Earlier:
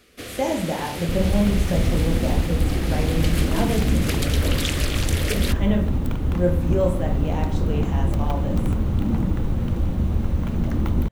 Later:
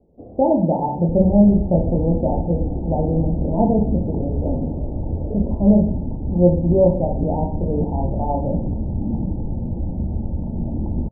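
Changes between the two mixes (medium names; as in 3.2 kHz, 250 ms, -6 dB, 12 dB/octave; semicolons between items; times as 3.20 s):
speech +8.5 dB; master: add rippled Chebyshev low-pass 910 Hz, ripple 3 dB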